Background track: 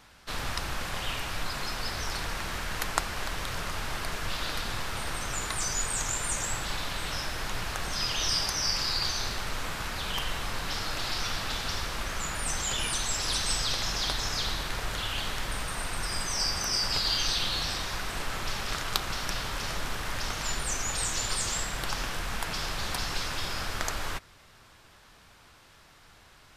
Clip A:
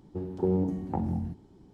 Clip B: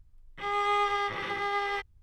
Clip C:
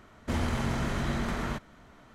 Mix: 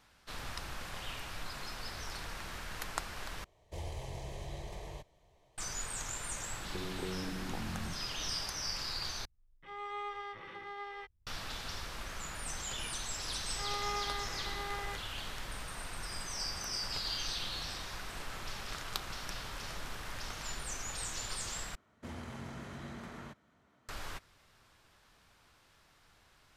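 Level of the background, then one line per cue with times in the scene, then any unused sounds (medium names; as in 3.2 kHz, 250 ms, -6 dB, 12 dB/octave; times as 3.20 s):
background track -9.5 dB
3.44 s: replace with C -9 dB + static phaser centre 580 Hz, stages 4
6.60 s: add A + compression, threshold -38 dBFS
9.25 s: replace with B -13.5 dB + treble shelf 4.5 kHz -6.5 dB
13.16 s: add B -11 dB
21.75 s: replace with C -14 dB + high-pass 77 Hz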